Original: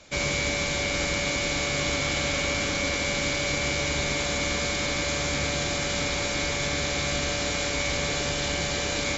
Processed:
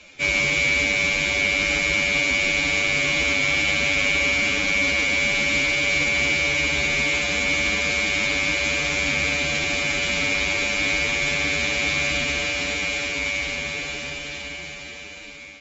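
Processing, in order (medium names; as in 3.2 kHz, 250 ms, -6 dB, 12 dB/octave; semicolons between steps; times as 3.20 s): fade out at the end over 2.11 s; reverse; upward compressor, threshold -38 dBFS; reverse; time stretch by phase-locked vocoder 1.7×; fifteen-band graphic EQ 100 Hz -5 dB, 250 Hz +3 dB, 2.5 kHz +12 dB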